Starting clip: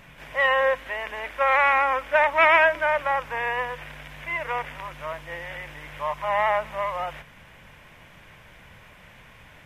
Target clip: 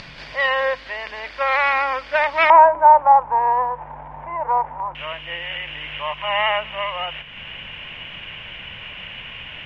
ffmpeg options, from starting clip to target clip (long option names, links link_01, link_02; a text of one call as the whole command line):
ffmpeg -i in.wav -af "acompressor=mode=upward:threshold=-33dB:ratio=2.5,asetnsamples=nb_out_samples=441:pad=0,asendcmd='2.5 lowpass f 890;4.95 lowpass f 2900',lowpass=frequency=4600:width_type=q:width=8.7" out.wav